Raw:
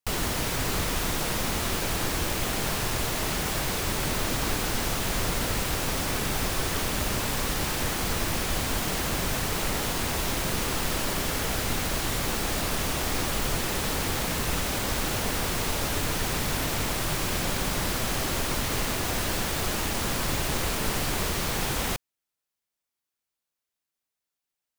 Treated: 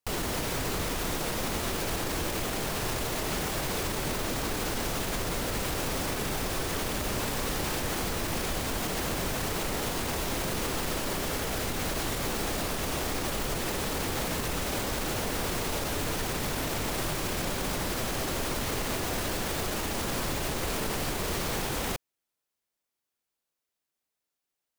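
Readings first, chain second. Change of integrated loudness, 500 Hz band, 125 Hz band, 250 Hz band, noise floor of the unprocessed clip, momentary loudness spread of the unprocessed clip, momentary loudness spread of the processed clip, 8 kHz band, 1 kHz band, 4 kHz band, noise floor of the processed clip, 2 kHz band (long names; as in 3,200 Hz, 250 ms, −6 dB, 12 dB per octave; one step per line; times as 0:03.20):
−3.5 dB, −0.5 dB, −4.0 dB, −2.0 dB, below −85 dBFS, 0 LU, 0 LU, −4.0 dB, −2.5 dB, −4.0 dB, below −85 dBFS, −3.5 dB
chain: parametric band 430 Hz +4 dB 1.9 octaves
brickwall limiter −21.5 dBFS, peak gain reduction 8 dB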